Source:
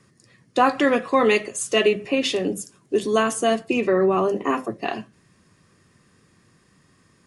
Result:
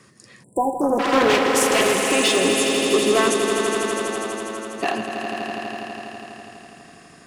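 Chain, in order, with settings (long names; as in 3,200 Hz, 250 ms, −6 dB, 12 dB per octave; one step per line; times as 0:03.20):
in parallel at +1.5 dB: downward compressor, threshold −28 dBFS, peak gain reduction 15 dB
0:03.34–0:04.77: on the sum: tuned comb filter 110 Hz, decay 2 s, mix 100%
gain into a clipping stage and back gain 16 dB
on a send: echo that builds up and dies away 82 ms, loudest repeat 5, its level −8 dB
0:00.43–0:00.99: on the sum: time-frequency box erased 1,000–7,300 Hz
low-shelf EQ 170 Hz −10 dB
0:00.81–0:02.12: highs frequency-modulated by the lows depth 0.31 ms
level +1.5 dB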